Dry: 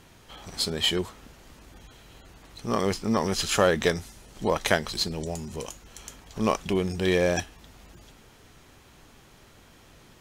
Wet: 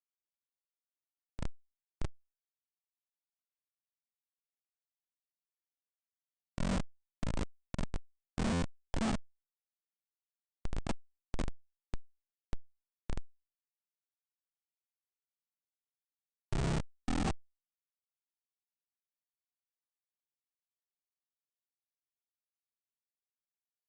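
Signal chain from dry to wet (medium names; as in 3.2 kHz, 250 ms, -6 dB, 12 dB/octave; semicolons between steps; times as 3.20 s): low-pass 3.5 kHz 6 dB/octave; peaking EQ 73 Hz -12 dB 2.6 oct; echo that smears into a reverb 905 ms, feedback 61%, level -15 dB; on a send at -6 dB: reverberation RT60 2.1 s, pre-delay 6 ms; on the sum: granulator 228 ms, grains 4 per s, spray 11 ms, pitch spread up and down by 3 st; static phaser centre 910 Hz, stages 6; Schmitt trigger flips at -28 dBFS; speed mistake 78 rpm record played at 33 rpm; buffer glitch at 8.52 s, samples 512, times 8; trim +7 dB; AAC 96 kbps 24 kHz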